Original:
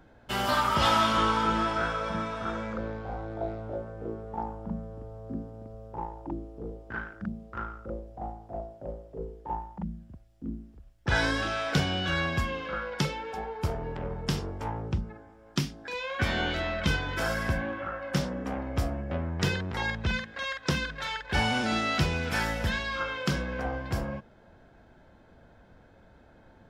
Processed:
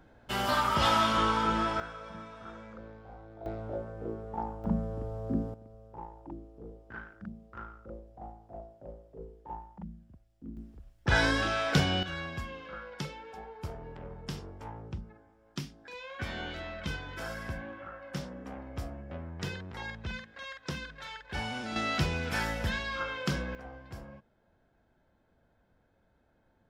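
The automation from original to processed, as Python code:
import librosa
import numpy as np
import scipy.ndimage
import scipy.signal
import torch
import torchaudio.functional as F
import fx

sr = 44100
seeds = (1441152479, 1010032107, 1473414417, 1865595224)

y = fx.gain(x, sr, db=fx.steps((0.0, -2.0), (1.8, -13.0), (3.46, -1.5), (4.64, 5.0), (5.54, -8.0), (10.57, 0.5), (12.03, -9.5), (21.76, -3.0), (23.55, -14.0)))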